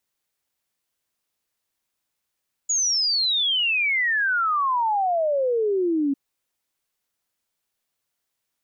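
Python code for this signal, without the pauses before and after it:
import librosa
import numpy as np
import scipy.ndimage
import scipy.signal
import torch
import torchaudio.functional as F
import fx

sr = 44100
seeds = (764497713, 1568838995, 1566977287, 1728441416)

y = fx.ess(sr, length_s=3.45, from_hz=6900.0, to_hz=270.0, level_db=-19.0)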